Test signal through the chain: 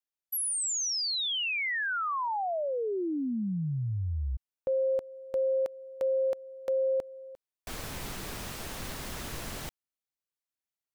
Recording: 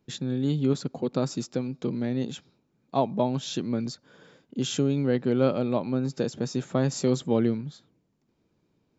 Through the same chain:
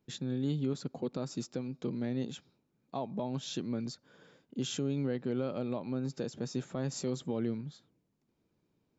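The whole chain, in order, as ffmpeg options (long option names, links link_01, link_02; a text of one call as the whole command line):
ffmpeg -i in.wav -af "alimiter=limit=-18dB:level=0:latency=1:release=153,volume=-6dB" out.wav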